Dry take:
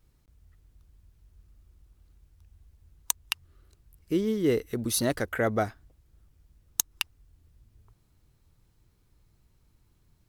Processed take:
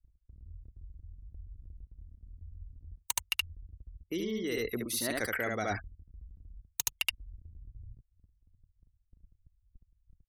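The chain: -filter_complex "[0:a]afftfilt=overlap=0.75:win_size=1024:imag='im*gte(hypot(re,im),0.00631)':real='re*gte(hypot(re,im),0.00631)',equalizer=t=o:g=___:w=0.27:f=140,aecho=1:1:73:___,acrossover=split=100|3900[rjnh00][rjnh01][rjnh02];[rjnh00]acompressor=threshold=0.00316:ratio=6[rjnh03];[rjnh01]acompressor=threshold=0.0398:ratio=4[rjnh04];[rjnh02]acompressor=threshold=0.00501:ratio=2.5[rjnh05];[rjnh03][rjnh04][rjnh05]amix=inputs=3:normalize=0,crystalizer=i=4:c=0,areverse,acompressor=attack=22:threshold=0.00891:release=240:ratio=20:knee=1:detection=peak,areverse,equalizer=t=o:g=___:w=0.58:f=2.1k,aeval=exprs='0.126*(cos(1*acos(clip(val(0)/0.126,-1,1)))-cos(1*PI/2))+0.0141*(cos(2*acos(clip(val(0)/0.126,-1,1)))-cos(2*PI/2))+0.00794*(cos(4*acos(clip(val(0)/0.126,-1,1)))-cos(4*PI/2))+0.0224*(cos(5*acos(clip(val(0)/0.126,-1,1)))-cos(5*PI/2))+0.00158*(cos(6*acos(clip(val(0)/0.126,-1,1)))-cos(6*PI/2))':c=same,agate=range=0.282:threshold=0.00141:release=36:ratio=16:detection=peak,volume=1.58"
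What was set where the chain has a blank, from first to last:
-13.5, 0.631, 6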